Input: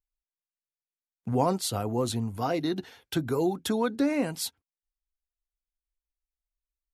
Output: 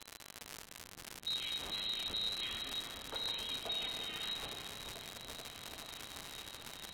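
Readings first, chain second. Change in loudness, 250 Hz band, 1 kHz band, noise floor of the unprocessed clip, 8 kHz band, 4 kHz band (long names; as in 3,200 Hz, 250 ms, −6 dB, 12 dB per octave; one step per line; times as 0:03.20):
−11.0 dB, −26.0 dB, −16.0 dB, below −85 dBFS, −8.5 dB, +4.0 dB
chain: lower of the sound and its delayed copy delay 0.34 ms
upward compression, threshold −35 dBFS
high-pass filter 41 Hz
brickwall limiter −29 dBFS, peak gain reduction 16.5 dB
brick-wall band-stop 270–670 Hz
voice inversion scrambler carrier 4,000 Hz
spring reverb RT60 3 s, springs 33 ms, chirp 55 ms, DRR 1.5 dB
surface crackle 170 per second −27 dBFS
echo whose low-pass opens from repeat to repeat 433 ms, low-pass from 200 Hz, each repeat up 1 octave, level 0 dB
treble cut that deepens with the level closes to 2,700 Hz, closed at −15.5 dBFS
level −2.5 dB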